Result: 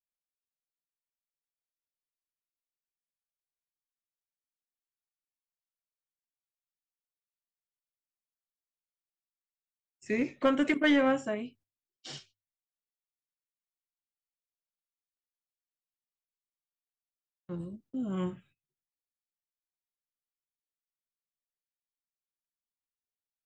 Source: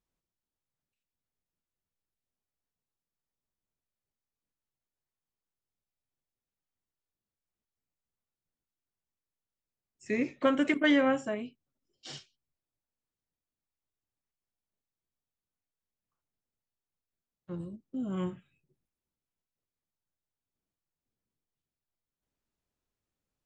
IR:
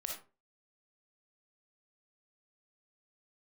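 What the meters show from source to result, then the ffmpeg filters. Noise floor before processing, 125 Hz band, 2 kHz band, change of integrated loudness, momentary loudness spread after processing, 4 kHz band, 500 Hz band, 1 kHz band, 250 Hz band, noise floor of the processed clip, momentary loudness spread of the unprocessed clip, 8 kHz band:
below −85 dBFS, +0.5 dB, 0.0 dB, 0.0 dB, 20 LU, 0.0 dB, 0.0 dB, +0.5 dB, 0.0 dB, below −85 dBFS, 21 LU, can't be measured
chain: -filter_complex "[0:a]agate=range=-23dB:threshold=-60dB:ratio=16:detection=peak,asplit=2[link_01][link_02];[link_02]aeval=exprs='clip(val(0),-1,0.0596)':channel_layout=same,volume=-6dB[link_03];[link_01][link_03]amix=inputs=2:normalize=0,bandreject=frequency=50:width_type=h:width=6,bandreject=frequency=100:width_type=h:width=6,volume=-3dB"

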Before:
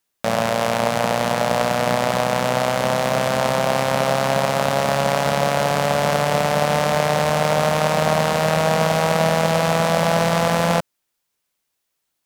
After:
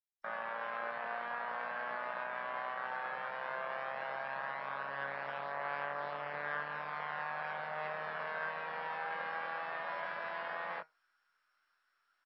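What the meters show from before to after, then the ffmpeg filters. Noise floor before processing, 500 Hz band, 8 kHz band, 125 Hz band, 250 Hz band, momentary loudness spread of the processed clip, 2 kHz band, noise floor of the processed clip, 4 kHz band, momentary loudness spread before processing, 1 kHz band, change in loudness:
−76 dBFS, −25.5 dB, below −40 dB, −36.5 dB, −34.5 dB, 2 LU, −14.0 dB, −79 dBFS, −28.0 dB, 2 LU, −18.5 dB, −20.5 dB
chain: -filter_complex "[0:a]afftdn=noise_reduction=19:noise_floor=-30,bandpass=frequency=1400:width_type=q:width=6.6:csg=0,areverse,acompressor=mode=upward:threshold=-48dB:ratio=2.5,areverse,afftfilt=real='re*lt(hypot(re,im),0.0794)':imag='im*lt(hypot(re,im),0.0794)':win_size=1024:overlap=0.75,flanger=delay=6.1:depth=1.5:regen=77:speed=0.27:shape=triangular,asplit=2[link_01][link_02];[link_02]adelay=21,volume=-4dB[link_03];[link_01][link_03]amix=inputs=2:normalize=0,volume=1dB" -ar 22050 -c:a mp2 -b:a 32k

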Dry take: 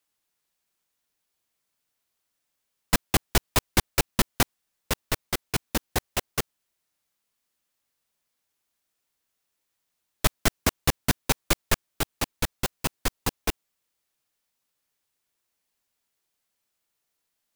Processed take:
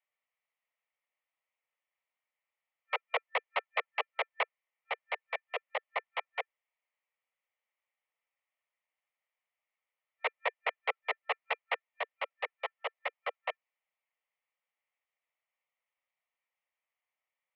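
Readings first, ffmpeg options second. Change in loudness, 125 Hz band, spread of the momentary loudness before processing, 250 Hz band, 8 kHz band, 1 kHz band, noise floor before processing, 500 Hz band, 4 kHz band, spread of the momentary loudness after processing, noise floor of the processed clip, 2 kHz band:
−9.0 dB, below −40 dB, 8 LU, below −40 dB, below −40 dB, −4.5 dB, −80 dBFS, −6.0 dB, −13.0 dB, 6 LU, below −85 dBFS, −3.5 dB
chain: -af "superequalizer=10b=0.501:11b=1.78,highpass=frequency=180:width_type=q:width=0.5412,highpass=frequency=180:width_type=q:width=1.307,lowpass=frequency=2700:width_type=q:width=0.5176,lowpass=frequency=2700:width_type=q:width=0.7071,lowpass=frequency=2700:width_type=q:width=1.932,afreqshift=300,afftfilt=real='re*lt(hypot(re,im),0.398)':imag='im*lt(hypot(re,im),0.398)':win_size=1024:overlap=0.75,volume=-5.5dB"

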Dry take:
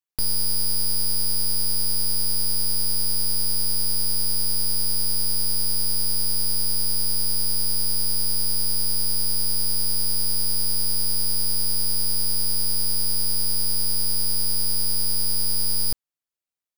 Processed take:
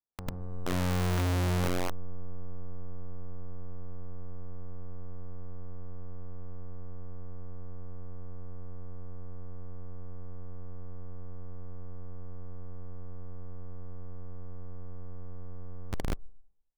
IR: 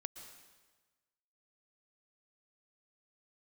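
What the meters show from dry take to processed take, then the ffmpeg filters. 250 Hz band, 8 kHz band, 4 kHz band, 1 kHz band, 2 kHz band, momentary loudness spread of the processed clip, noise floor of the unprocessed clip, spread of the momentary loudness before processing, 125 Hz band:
+0.5 dB, below −25 dB, below −25 dB, +1.5 dB, −0.5 dB, 17 LU, below −85 dBFS, 0 LU, 0.0 dB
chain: -filter_complex "[0:a]asubboost=boost=3.5:cutoff=60,asplit=2[link_01][link_02];[link_02]aecho=0:1:147:0.15[link_03];[link_01][link_03]amix=inputs=2:normalize=0,acrossover=split=1400|3300[link_04][link_05][link_06];[link_04]acompressor=threshold=-17dB:ratio=4[link_07];[link_05]acompressor=threshold=-55dB:ratio=4[link_08];[link_06]acompressor=threshold=-35dB:ratio=4[link_09];[link_07][link_08][link_09]amix=inputs=3:normalize=0,lowpass=4900[link_10];[1:a]atrim=start_sample=2205,asetrate=70560,aresample=44100[link_11];[link_10][link_11]afir=irnorm=-1:irlink=0,acrossover=split=490|1300[link_12][link_13][link_14];[link_12]aeval=exprs='(mod(44.7*val(0)+1,2)-1)/44.7':channel_layout=same[link_15];[link_14]acrusher=bits=3:mix=0:aa=0.5[link_16];[link_15][link_13][link_16]amix=inputs=3:normalize=0,volume=7dB"

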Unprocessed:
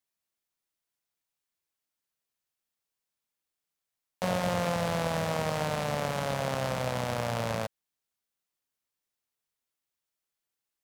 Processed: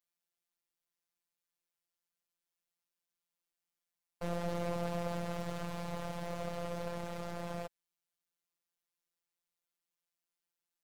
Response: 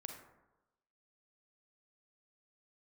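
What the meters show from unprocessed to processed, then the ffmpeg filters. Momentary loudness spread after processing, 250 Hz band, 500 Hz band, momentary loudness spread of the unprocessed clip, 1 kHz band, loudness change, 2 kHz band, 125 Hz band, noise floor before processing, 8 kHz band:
6 LU, −6.0 dB, −8.5 dB, 3 LU, −10.5 dB, −9.0 dB, −12.5 dB, −8.5 dB, below −85 dBFS, −12.5 dB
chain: -af "aeval=exprs='clip(val(0),-1,0.0133)':channel_layout=same,afftfilt=real='hypot(re,im)*cos(PI*b)':imag='0':win_size=1024:overlap=0.75,volume=-1.5dB"

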